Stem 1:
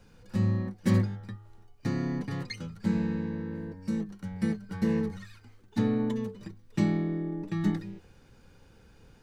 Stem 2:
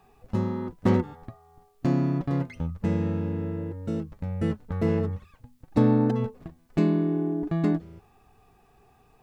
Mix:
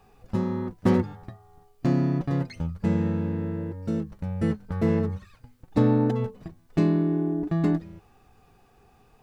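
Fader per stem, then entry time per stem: -7.5, 0.0 dB; 0.00, 0.00 s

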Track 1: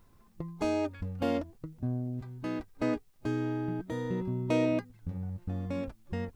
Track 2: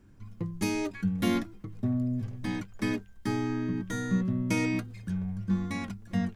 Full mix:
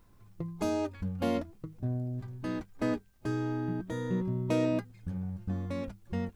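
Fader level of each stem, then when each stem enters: -1.0, -12.0 dB; 0.00, 0.00 s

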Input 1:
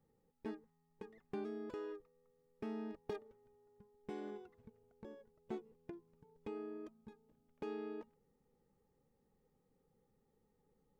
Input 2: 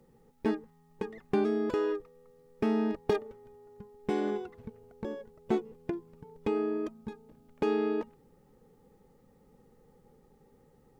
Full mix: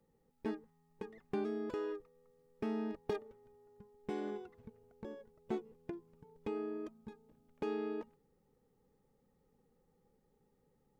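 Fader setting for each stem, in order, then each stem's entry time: -2.0, -14.0 dB; 0.00, 0.00 s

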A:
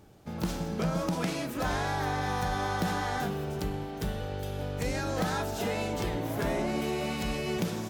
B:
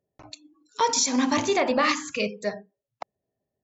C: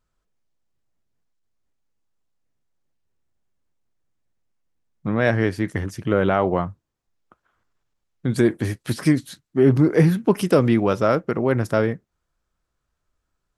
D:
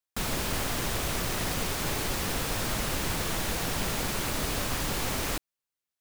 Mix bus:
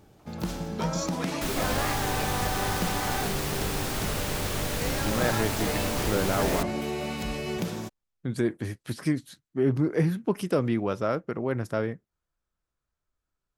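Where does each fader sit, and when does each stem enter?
0.0, -13.5, -8.5, -1.0 dB; 0.00, 0.00, 0.00, 1.25 s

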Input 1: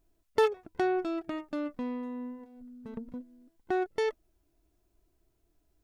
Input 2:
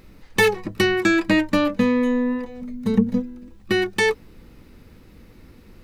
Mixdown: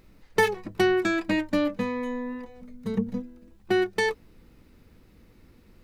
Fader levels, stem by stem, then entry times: +2.0, -8.0 dB; 0.00, 0.00 s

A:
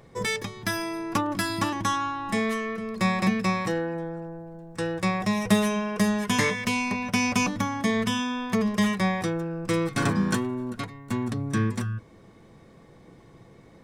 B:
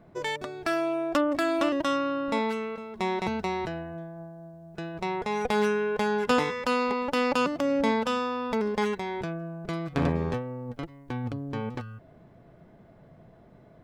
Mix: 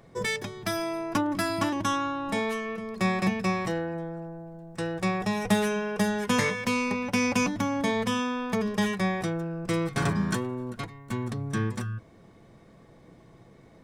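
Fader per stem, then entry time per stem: -3.0, -7.0 dB; 0.00, 0.00 s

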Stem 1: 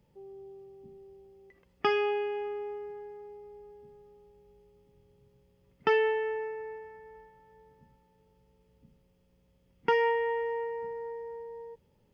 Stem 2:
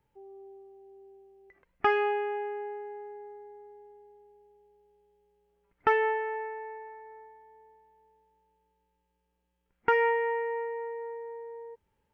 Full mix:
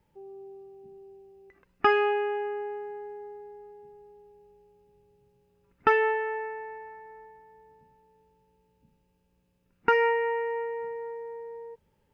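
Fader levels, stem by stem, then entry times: -5.0, +2.5 dB; 0.00, 0.00 s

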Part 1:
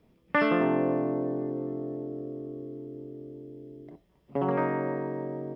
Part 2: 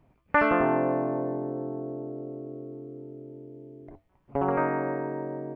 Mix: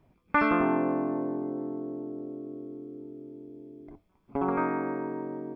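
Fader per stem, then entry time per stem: -7.5, -2.5 dB; 0.00, 0.00 s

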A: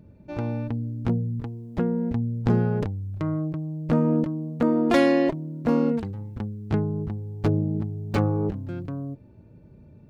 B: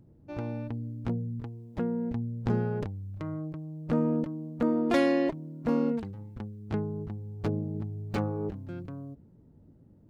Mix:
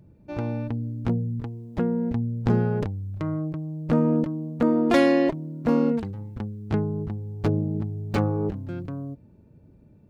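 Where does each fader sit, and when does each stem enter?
-6.0, 0.0 dB; 0.00, 0.00 s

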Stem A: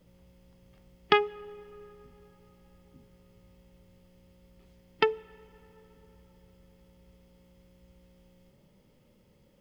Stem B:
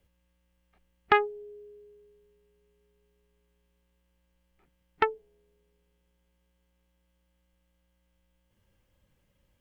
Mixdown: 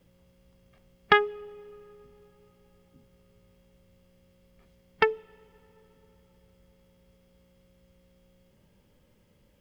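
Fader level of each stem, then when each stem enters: -2.5, +2.5 dB; 0.00, 0.00 s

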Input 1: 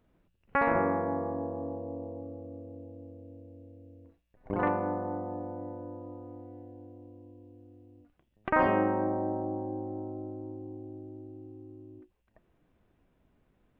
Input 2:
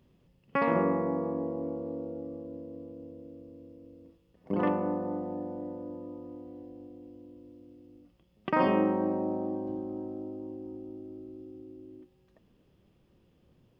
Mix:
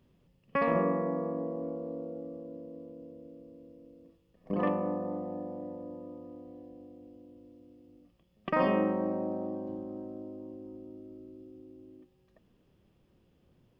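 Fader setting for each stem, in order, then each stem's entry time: -11.0, -2.0 dB; 0.00, 0.00 s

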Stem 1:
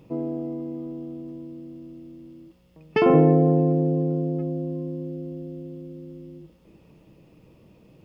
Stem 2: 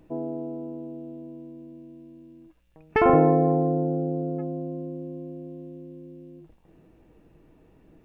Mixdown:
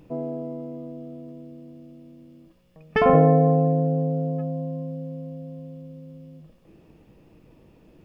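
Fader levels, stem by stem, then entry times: -2.5, -0.5 dB; 0.00, 0.00 s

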